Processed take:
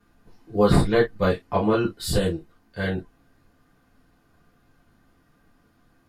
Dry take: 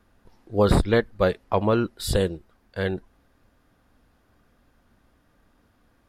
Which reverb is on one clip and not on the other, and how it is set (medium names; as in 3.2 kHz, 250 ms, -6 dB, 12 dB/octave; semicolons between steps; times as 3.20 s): gated-style reverb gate 80 ms falling, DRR -7 dB; trim -7 dB